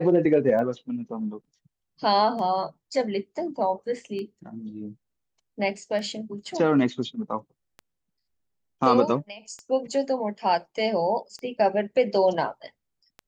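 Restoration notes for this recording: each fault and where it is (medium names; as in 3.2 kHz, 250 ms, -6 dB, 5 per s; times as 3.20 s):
tick 33 1/3 rpm -25 dBFS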